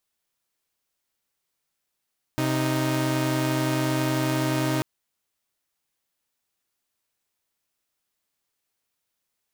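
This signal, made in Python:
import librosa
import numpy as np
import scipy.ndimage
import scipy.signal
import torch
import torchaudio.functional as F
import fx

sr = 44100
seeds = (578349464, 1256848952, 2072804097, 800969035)

y = fx.chord(sr, length_s=2.44, notes=(48, 63), wave='saw', level_db=-22.5)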